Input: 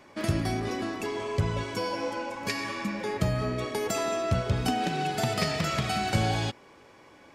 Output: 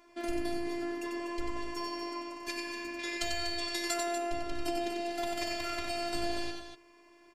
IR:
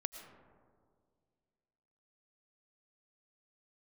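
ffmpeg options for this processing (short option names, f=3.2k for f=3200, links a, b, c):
-filter_complex "[0:a]asettb=1/sr,asplit=3[a][b][c];[a]atrim=end=2.994[d];[b]atrim=start=2.99:end=3.94,asetpts=PTS-STARTPTS,afade=t=in:d=0.004:c=qsin,afade=t=out:st=0.946:d=0.004:c=qsin,equalizer=f=250:t=o:w=1:g=-9,equalizer=f=2k:t=o:w=1:g=5,equalizer=f=4k:t=o:w=1:g=11,equalizer=f=8k:t=o:w=1:g=9[e];[c]atrim=start=3.936[f];[d][e]acrossfade=d=0.004:c1=hsin:c2=qsin[g];[g][f]acrossfade=d=0.004:c1=qsin:c2=hsin,afftfilt=real='hypot(re,im)*cos(PI*b)':imag='0':win_size=512:overlap=0.75,aecho=1:1:93.29|242:0.562|0.355,volume=-3.5dB"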